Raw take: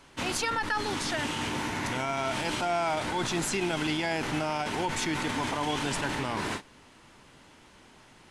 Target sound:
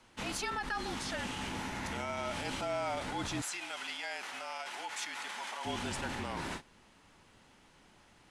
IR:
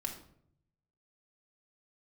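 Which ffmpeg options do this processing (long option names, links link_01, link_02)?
-filter_complex "[0:a]asettb=1/sr,asplit=3[link_01][link_02][link_03];[link_01]atrim=end=3.414[link_04];[link_02]atrim=start=3.41:end=5.65,asetpts=PTS-STARTPTS,afade=type=in:duration=0.004:curve=qsin,afade=type=out:start_time=2.236:duration=0.004:curve=qsin,highpass=910[link_05];[link_03]atrim=start=5.646[link_06];[link_04][link_05]acrossfade=duration=0.004:curve1=hsin:curve2=qsin[link_07];[link_07][link_06]acrossfade=duration=0.004:curve1=qsin:curve2=hsin,afreqshift=-42,volume=-7dB"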